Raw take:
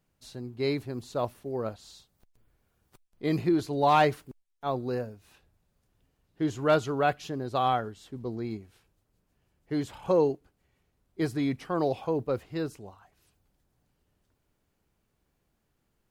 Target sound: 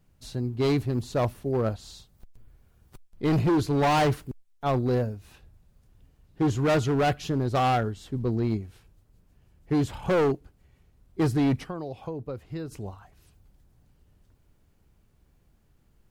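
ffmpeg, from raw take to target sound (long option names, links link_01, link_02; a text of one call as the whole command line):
ffmpeg -i in.wav -filter_complex "[0:a]lowshelf=frequency=160:gain=12,asplit=3[link_01][link_02][link_03];[link_01]afade=type=out:start_time=11.63:duration=0.02[link_04];[link_02]acompressor=threshold=-37dB:ratio=6,afade=type=in:start_time=11.63:duration=0.02,afade=type=out:start_time=12.71:duration=0.02[link_05];[link_03]afade=type=in:start_time=12.71:duration=0.02[link_06];[link_04][link_05][link_06]amix=inputs=3:normalize=0,asoftclip=type=hard:threshold=-24dB,volume=4.5dB" out.wav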